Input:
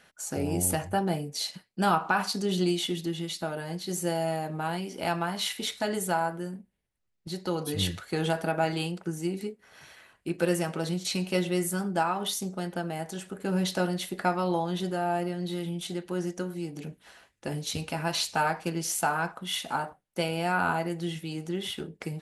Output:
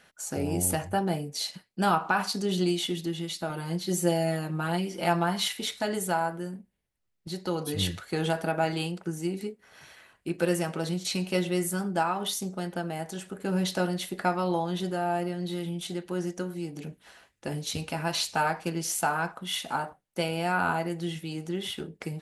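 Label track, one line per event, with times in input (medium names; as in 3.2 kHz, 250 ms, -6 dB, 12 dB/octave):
3.490000	5.480000	comb 5.7 ms, depth 80%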